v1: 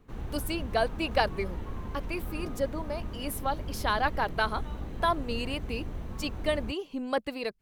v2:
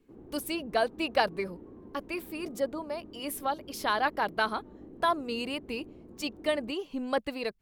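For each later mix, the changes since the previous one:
background: add resonant band-pass 330 Hz, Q 2.5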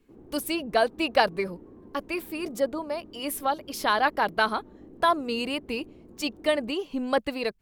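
speech +4.5 dB

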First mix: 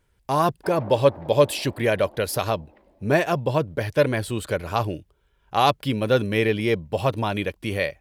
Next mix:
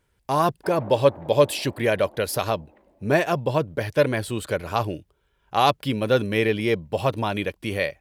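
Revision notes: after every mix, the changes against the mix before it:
background: add high-frequency loss of the air 210 metres
master: add low-shelf EQ 65 Hz −7 dB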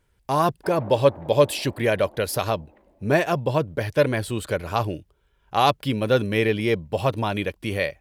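master: add low-shelf EQ 65 Hz +7 dB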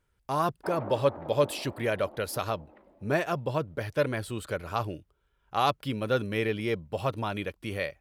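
speech −7.5 dB
master: add parametric band 1,300 Hz +6 dB 0.31 octaves

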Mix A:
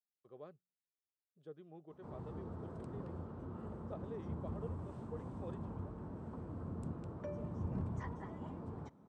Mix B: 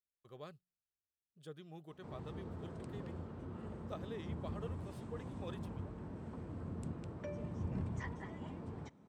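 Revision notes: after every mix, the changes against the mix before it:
speech: remove resonant band-pass 430 Hz, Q 0.77
background: add high shelf with overshoot 1,600 Hz +6.5 dB, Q 1.5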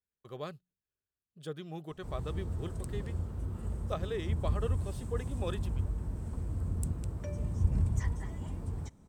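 speech +10.0 dB
background: remove band-pass filter 180–3,400 Hz

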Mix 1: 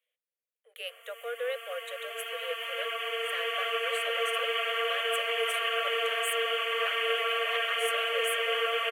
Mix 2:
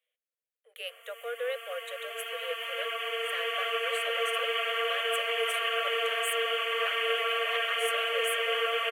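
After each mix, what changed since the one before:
nothing changed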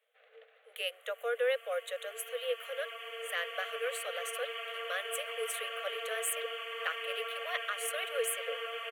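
speech +3.0 dB
first sound: unmuted
second sound −10.5 dB

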